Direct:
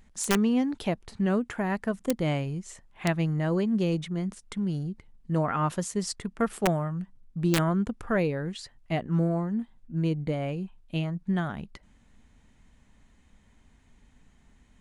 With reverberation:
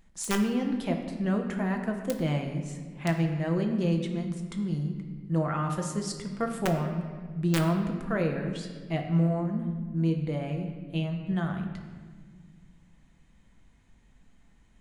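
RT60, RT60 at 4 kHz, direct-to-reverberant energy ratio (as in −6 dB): 1.6 s, 1.1 s, 2.5 dB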